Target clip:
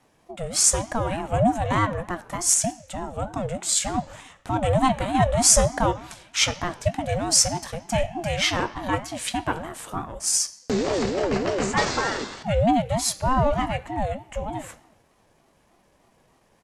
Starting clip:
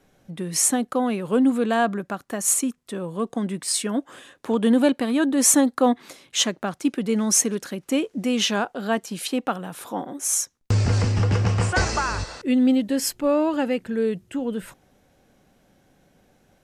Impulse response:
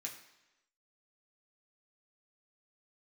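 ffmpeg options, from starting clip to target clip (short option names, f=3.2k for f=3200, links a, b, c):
-filter_complex "[0:a]asetrate=39289,aresample=44100,atempo=1.12246,asplit=2[a][b];[1:a]atrim=start_sample=2205[c];[b][c]afir=irnorm=-1:irlink=0,volume=-1.5dB[d];[a][d]amix=inputs=2:normalize=0,aeval=exprs='val(0)*sin(2*PI*410*n/s+410*0.3/3.3*sin(2*PI*3.3*n/s))':c=same"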